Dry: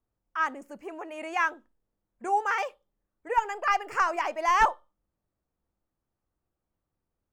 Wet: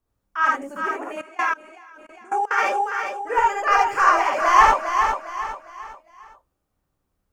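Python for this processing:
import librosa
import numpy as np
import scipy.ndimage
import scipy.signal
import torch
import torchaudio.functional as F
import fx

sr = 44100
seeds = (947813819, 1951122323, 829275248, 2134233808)

p1 = x + fx.echo_feedback(x, sr, ms=405, feedback_pct=37, wet_db=-6.5, dry=0)
p2 = fx.rev_gated(p1, sr, seeds[0], gate_ms=100, shape='rising', drr_db=-3.5)
p3 = fx.level_steps(p2, sr, step_db=24, at=(1.21, 2.58))
y = p3 * librosa.db_to_amplitude(3.0)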